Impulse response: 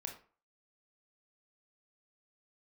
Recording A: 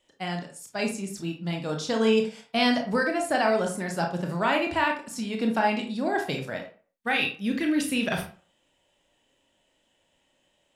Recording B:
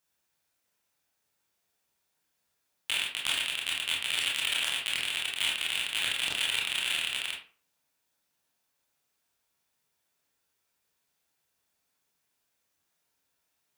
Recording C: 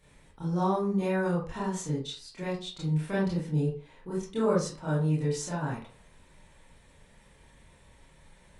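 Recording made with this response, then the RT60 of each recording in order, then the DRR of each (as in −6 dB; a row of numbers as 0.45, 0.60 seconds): A; 0.40, 0.40, 0.40 seconds; 2.0, −3.5, −9.0 decibels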